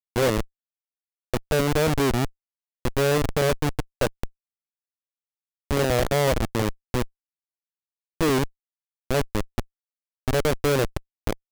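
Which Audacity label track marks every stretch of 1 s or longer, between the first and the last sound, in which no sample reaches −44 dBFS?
4.280000	5.710000	silence
7.070000	8.210000	silence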